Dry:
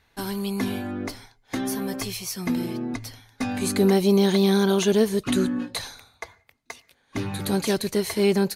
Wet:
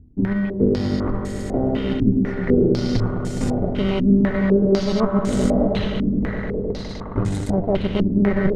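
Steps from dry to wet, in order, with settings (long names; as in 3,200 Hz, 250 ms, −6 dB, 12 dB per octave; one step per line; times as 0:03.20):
low-shelf EQ 150 Hz +12 dB
harmonic generator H 4 −9 dB, 7 −26 dB, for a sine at −6 dBFS
reversed playback
downward compressor 5 to 1, threshold −32 dBFS, peak gain reduction 20.5 dB
reversed playback
tilt shelving filter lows +6.5 dB, about 700 Hz
in parallel at −8 dB: decimation without filtering 26×
on the sum: echo that builds up and dies away 104 ms, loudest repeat 5, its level −10 dB
low-pass on a step sequencer 4 Hz 270–7,900 Hz
level +5.5 dB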